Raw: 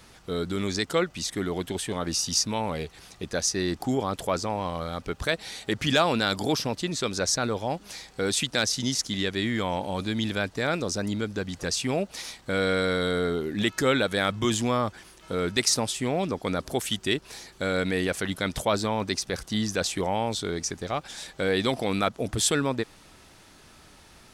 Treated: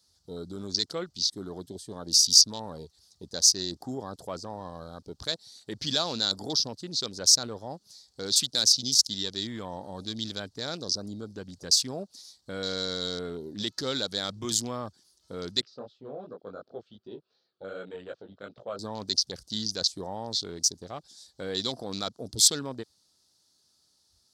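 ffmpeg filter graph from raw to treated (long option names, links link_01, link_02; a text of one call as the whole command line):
ffmpeg -i in.wav -filter_complex "[0:a]asettb=1/sr,asplit=3[link_01][link_02][link_03];[link_01]atrim=end=15.614[link_04];[link_02]atrim=start=15.61:end=18.79,asetpts=PTS-STARTPTS,afade=type=in:duration=0.004:curve=qsin,afade=type=out:start_time=3.176:duration=0.004:curve=qsin,highpass=170,equalizer=frequency=180:width_type=q:width=4:gain=-6,equalizer=frequency=290:width_type=q:width=4:gain=-6,equalizer=frequency=510:width_type=q:width=4:gain=4,equalizer=frequency=910:width_type=q:width=4:gain=-10,equalizer=frequency=1300:width_type=q:width=4:gain=5,equalizer=frequency=2000:width_type=q:width=4:gain=-8,lowpass=frequency=2800:width=0.5412,lowpass=frequency=2800:width=1.3066,flanger=delay=16.5:depth=4.3:speed=2.7[link_05];[link_03]atrim=start=18.786[link_06];[link_04][link_05]acrossfade=duration=0.004:curve1=hsin:curve2=qsin[link_07];[link_07][link_06]acrossfade=duration=0.004:curve1=qsin:curve2=hsin,afwtdn=0.0158,highpass=71,highshelf=frequency=3300:width_type=q:width=3:gain=11.5,volume=-9dB" out.wav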